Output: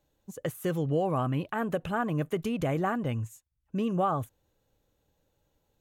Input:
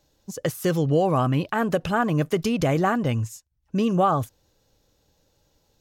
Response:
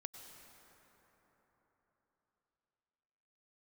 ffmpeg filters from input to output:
-af "equalizer=f=5.1k:t=o:w=0.64:g=-12.5,volume=-7dB"

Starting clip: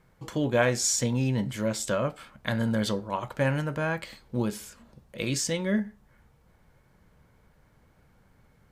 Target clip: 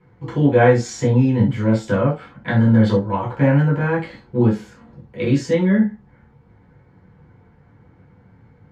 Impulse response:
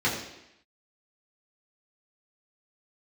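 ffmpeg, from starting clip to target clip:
-filter_complex "[0:a]lowpass=f=1.3k:p=1[a];[1:a]atrim=start_sample=2205,atrim=end_sample=3528[b];[a][b]afir=irnorm=-1:irlink=0,volume=-2dB"

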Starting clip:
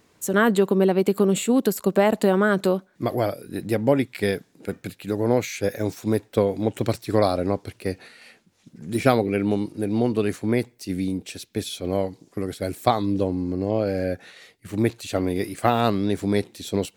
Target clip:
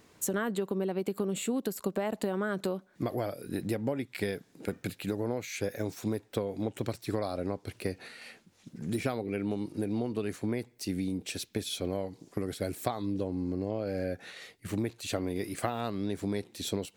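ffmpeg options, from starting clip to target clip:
-af "acompressor=threshold=-29dB:ratio=6"

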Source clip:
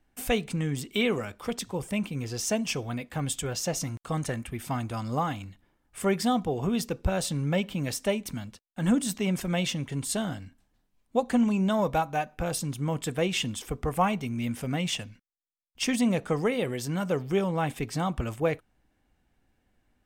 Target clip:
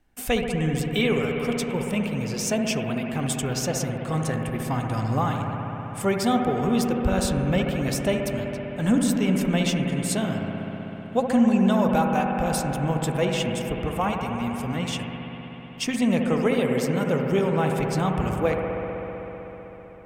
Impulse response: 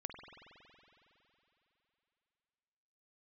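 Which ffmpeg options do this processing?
-filter_complex "[0:a]asettb=1/sr,asplit=3[a][b][c];[a]atrim=end=13.254[d];[b]atrim=start=13.25:end=16.02,asetpts=PTS-STARTPTS,afade=t=in:d=0.004:c=qsin,afade=t=out:st=2.766:d=0.004:c=qsin,acrossover=split=1700[e][f];[e]aeval=exprs='val(0)*(1-0.5/2+0.5/2*cos(2*PI*8.4*n/s))':c=same[g];[f]aeval=exprs='val(0)*(1-0.5/2-0.5/2*cos(2*PI*8.4*n/s))':c=same[h];[g][h]amix=inputs=2:normalize=0[i];[c]atrim=start=16.016[j];[d][i]acrossfade=d=0.004:c1=hsin:c2=qsin[k];[k][j]acrossfade=d=0.004:c1=qsin:c2=hsin[l];[1:a]atrim=start_sample=2205,asetrate=32193,aresample=44100[m];[l][m]afir=irnorm=-1:irlink=0,volume=5dB"

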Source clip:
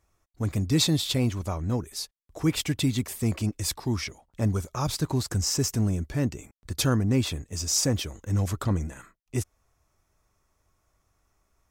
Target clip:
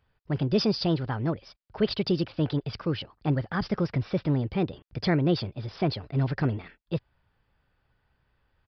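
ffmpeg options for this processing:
-af "asetrate=59535,aresample=44100,aresample=11025,aresample=44100"

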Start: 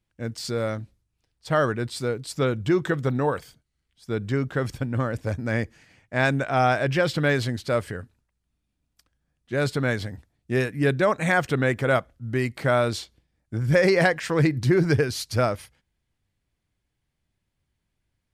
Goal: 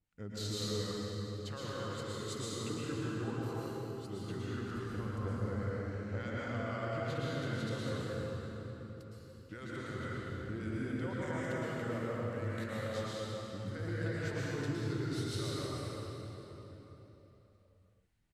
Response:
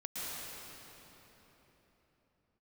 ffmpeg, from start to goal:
-filter_complex "[0:a]acompressor=threshold=-33dB:ratio=16,asetrate=39289,aresample=44100,atempo=1.12246,acrossover=split=1100[a][b];[a]aeval=exprs='val(0)*(1-0.7/2+0.7/2*cos(2*PI*3.6*n/s))':c=same[c];[b]aeval=exprs='val(0)*(1-0.7/2-0.7/2*cos(2*PI*3.6*n/s))':c=same[d];[c][d]amix=inputs=2:normalize=0[e];[1:a]atrim=start_sample=2205[f];[e][f]afir=irnorm=-1:irlink=0"

